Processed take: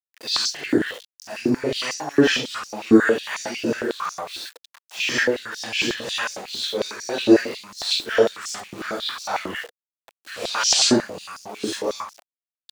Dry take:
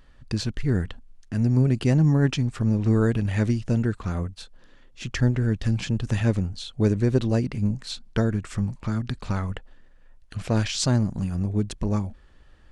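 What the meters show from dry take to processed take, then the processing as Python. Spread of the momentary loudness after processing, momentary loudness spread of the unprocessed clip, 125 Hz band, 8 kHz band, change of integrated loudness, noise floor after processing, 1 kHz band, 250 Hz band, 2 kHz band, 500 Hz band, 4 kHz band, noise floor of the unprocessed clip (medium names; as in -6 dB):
17 LU, 11 LU, -17.5 dB, +11.0 dB, +2.5 dB, under -85 dBFS, +8.5 dB, +1.5 dB, +11.5 dB, +7.0 dB, +12.5 dB, -53 dBFS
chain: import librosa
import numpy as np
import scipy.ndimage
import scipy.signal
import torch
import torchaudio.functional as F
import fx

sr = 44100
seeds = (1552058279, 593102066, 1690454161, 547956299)

y = fx.phase_scramble(x, sr, seeds[0], window_ms=200)
y = fx.peak_eq(y, sr, hz=4100.0, db=6.0, octaves=1.5)
y = np.where(np.abs(y) >= 10.0 ** (-42.0 / 20.0), y, 0.0)
y = fx.filter_held_highpass(y, sr, hz=11.0, low_hz=330.0, high_hz=5600.0)
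y = F.gain(torch.from_numpy(y), 5.0).numpy()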